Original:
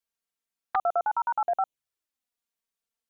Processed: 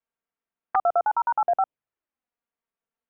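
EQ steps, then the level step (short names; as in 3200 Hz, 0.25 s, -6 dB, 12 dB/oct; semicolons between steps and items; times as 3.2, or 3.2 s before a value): Gaussian blur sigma 3.8 samples; low shelf 130 Hz -5 dB; +5.0 dB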